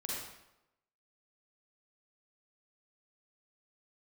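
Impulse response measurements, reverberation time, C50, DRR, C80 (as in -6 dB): 0.90 s, -3.0 dB, -5.0 dB, 1.5 dB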